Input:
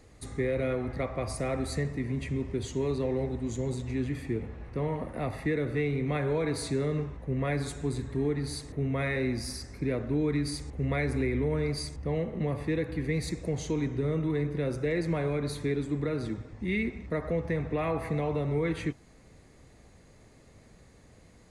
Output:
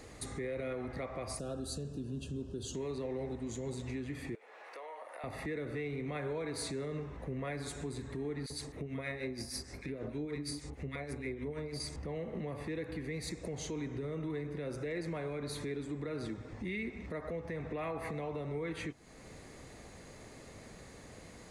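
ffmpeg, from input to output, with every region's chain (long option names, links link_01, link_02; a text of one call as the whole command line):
ffmpeg -i in.wav -filter_complex "[0:a]asettb=1/sr,asplit=3[link_01][link_02][link_03];[link_01]atrim=end=1.394[link_04];[link_02]atrim=start=1.39:end=2.75,asetpts=PTS-STARTPTS,afade=type=in:duration=0.004:curve=qsin,afade=type=out:start_time=1.356:duration=0.004:curve=qsin,asuperstop=centerf=2100:order=12:qfactor=2.2,equalizer=frequency=990:width_type=o:width=1.4:gain=-11.5[link_05];[link_03]atrim=start=2.746[link_06];[link_04][link_05]acrossfade=duration=0.004:curve1=hsin:curve2=qsin[link_07];[link_07][link_06]acrossfade=duration=0.004:curve1=qsin:curve2=hsin,asettb=1/sr,asplit=3[link_08][link_09][link_10];[link_08]atrim=end=4.354[link_11];[link_09]atrim=start=4.35:end=5.24,asetpts=PTS-STARTPTS,afade=type=in:duration=0.004:curve=qsin,afade=type=out:start_time=0.886:duration=0.004:curve=qsin,highpass=frequency=590:width=0.5412,highpass=frequency=590:width=1.3066,acompressor=threshold=-53dB:ratio=4:attack=3.2:release=140:knee=1:detection=peak[link_12];[link_10]atrim=start=5.236[link_13];[link_11][link_12]acrossfade=duration=0.004:curve1=hsin:curve2=qsin[link_14];[link_14][link_13]acrossfade=duration=0.004:curve1=qsin:curve2=hsin,asettb=1/sr,asplit=3[link_15][link_16][link_17];[link_15]atrim=end=8.464[link_18];[link_16]atrim=start=8.46:end=11.8,asetpts=PTS-STARTPTS,afade=type=in:duration=0.004:curve=qsin,afade=type=out:start_time=3.336:duration=0.004:curve=qsin,tremolo=f=6.4:d=0.7,acrossover=split=1300[link_19][link_20];[link_19]adelay=40[link_21];[link_21][link_20]amix=inputs=2:normalize=0,atrim=end_sample=147294[link_22];[link_17]atrim=start=11.796[link_23];[link_18][link_22]acrossfade=duration=0.004:curve1=hsin:curve2=qsin[link_24];[link_24][link_23]acrossfade=duration=0.004:curve1=qsin:curve2=hsin,acompressor=threshold=-49dB:ratio=1.5,alimiter=level_in=11.5dB:limit=-24dB:level=0:latency=1:release=206,volume=-11.5dB,lowshelf=frequency=180:gain=-8,volume=7.5dB" out.wav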